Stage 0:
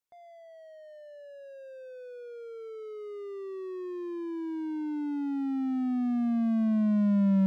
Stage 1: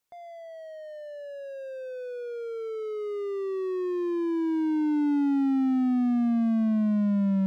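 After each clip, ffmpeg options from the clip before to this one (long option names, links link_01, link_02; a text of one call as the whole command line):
ffmpeg -i in.wav -af "alimiter=level_in=3dB:limit=-24dB:level=0:latency=1,volume=-3dB,volume=8dB" out.wav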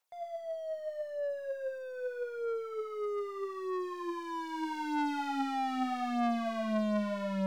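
ffmpeg -i in.wav -af "lowshelf=frequency=430:width_type=q:width=1.5:gain=-13,aeval=exprs='0.0631*(cos(1*acos(clip(val(0)/0.0631,-1,1)))-cos(1*PI/2))+0.00158*(cos(2*acos(clip(val(0)/0.0631,-1,1)))-cos(2*PI/2))+0.00316*(cos(4*acos(clip(val(0)/0.0631,-1,1)))-cos(4*PI/2))+0.001*(cos(6*acos(clip(val(0)/0.0631,-1,1)))-cos(6*PI/2))+0.00447*(cos(7*acos(clip(val(0)/0.0631,-1,1)))-cos(7*PI/2))':channel_layout=same,aphaser=in_gain=1:out_gain=1:delay=5:decay=0.48:speed=0.8:type=sinusoidal,volume=3dB" out.wav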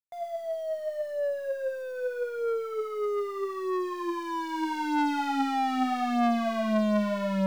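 ffmpeg -i in.wav -af "acrusher=bits=10:mix=0:aa=0.000001,volume=6dB" out.wav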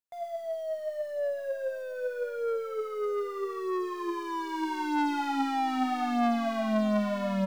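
ffmpeg -i in.wav -af "aecho=1:1:1043:0.158,volume=-1.5dB" out.wav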